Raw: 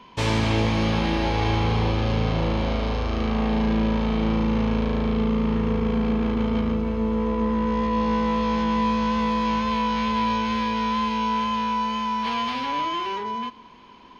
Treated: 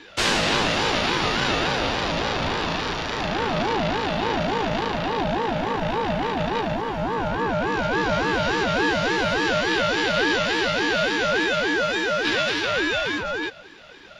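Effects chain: HPF 130 Hz 12 dB/oct; tilt shelf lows -5.5 dB, about 1400 Hz; ring modulator with a swept carrier 540 Hz, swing 30%, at 3.5 Hz; gain +7 dB

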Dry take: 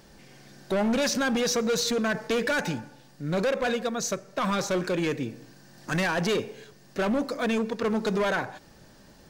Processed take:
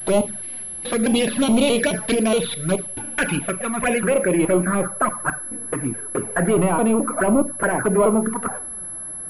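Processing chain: slices in reverse order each 0.212 s, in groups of 4; careless resampling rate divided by 6×, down filtered, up hold; on a send at -10 dB: reverb RT60 0.35 s, pre-delay 3 ms; on the sum: envelope flanger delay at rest 7.4 ms, full sweep at -22.5 dBFS; low-pass sweep 3900 Hz -> 1400 Hz, 2.73–4.83; pulse-width modulation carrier 11000 Hz; gain +8.5 dB

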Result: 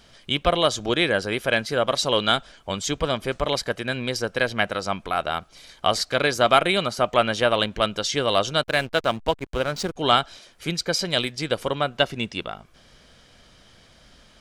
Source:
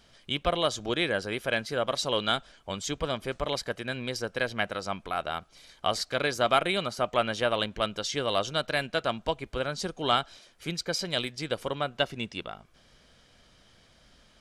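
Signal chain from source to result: 8.63–9.96 backlash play -36 dBFS; gain +6.5 dB

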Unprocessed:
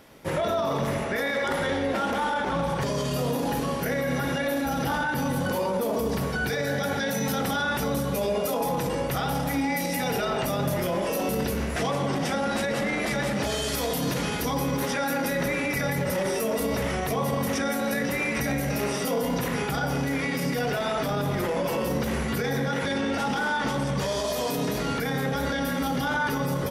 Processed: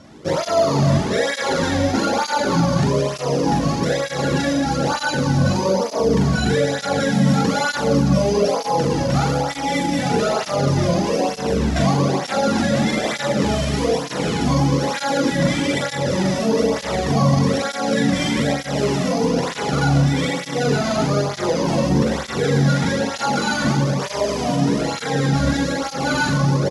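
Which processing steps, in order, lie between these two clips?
sample sorter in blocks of 8 samples; Chebyshev low-pass 7700 Hz, order 3; low shelf 210 Hz +8 dB; doubler 42 ms -2.5 dB; tape flanging out of phase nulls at 1.1 Hz, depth 2.5 ms; gain +7.5 dB

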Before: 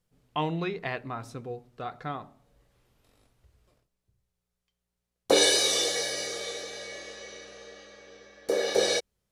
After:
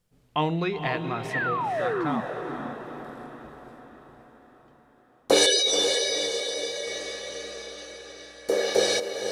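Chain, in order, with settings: 5.46–6.87 spectral contrast raised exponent 1.9; vocal rider within 4 dB 2 s; 1.33–2.21 painted sound fall 210–2000 Hz -28 dBFS; diffused feedback echo 0.485 s, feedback 54%, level -7 dB

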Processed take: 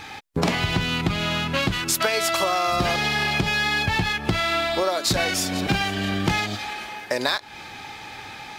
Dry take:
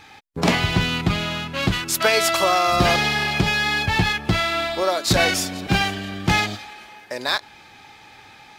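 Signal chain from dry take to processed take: compressor 6:1, threshold -28 dBFS, peak gain reduction 14.5 dB; gain +8 dB

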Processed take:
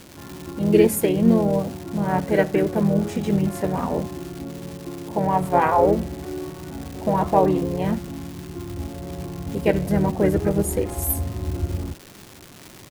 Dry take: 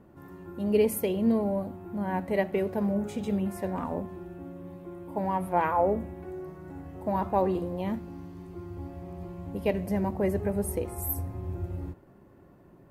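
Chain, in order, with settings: harmoniser -4 st -4 dB; crackle 470/s -37 dBFS; gain +6.5 dB

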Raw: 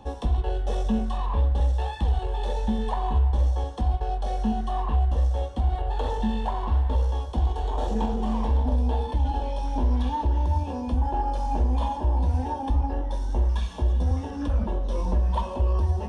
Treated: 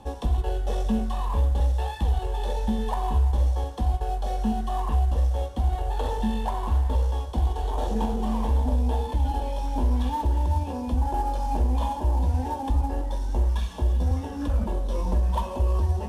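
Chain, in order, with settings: CVSD 64 kbps

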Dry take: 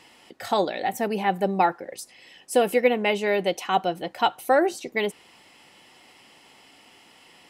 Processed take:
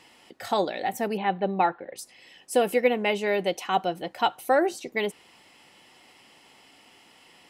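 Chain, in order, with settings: 1.17–1.96 Chebyshev low-pass 4100 Hz, order 6; gain -2 dB

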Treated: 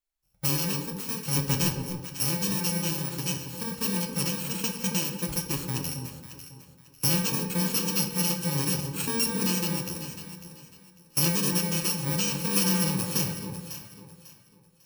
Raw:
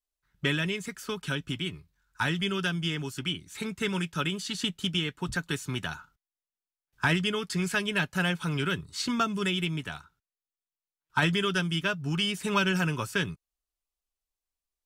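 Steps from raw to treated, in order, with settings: FFT order left unsorted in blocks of 64 samples; 1.33–1.73 sample leveller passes 2; echo with dull and thin repeats by turns 0.274 s, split 980 Hz, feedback 53%, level -6 dB; shoebox room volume 320 m³, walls mixed, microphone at 0.6 m

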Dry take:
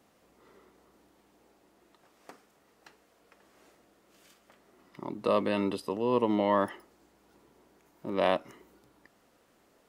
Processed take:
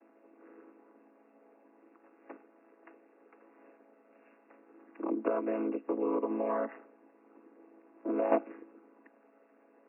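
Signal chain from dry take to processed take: chord vocoder major triad, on A2; 5.21–8.32 compressor 10:1, threshold -33 dBFS, peak gain reduction 11 dB; brick-wall FIR band-pass 220–2800 Hz; gain +6 dB

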